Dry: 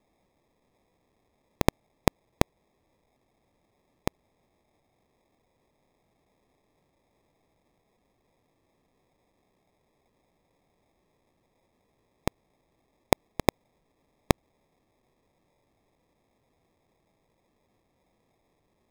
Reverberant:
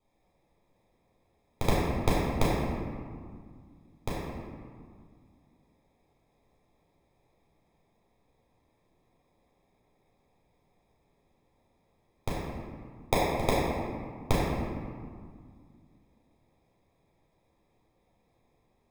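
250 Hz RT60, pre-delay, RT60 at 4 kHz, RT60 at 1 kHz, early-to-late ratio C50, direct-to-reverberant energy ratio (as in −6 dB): 2.8 s, 9 ms, 1.1 s, 2.0 s, −2.5 dB, −8.0 dB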